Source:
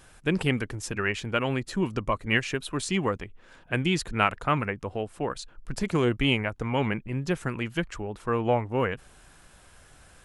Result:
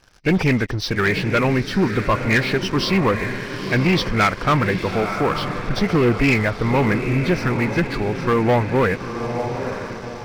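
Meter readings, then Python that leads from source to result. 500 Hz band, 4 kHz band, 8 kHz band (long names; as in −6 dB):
+9.0 dB, +6.5 dB, +2.5 dB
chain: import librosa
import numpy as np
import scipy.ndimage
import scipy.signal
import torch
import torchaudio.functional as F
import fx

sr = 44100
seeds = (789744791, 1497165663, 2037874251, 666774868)

y = fx.freq_compress(x, sr, knee_hz=1800.0, ratio=1.5)
y = fx.echo_diffused(y, sr, ms=903, feedback_pct=48, wet_db=-10.5)
y = fx.leveller(y, sr, passes=3)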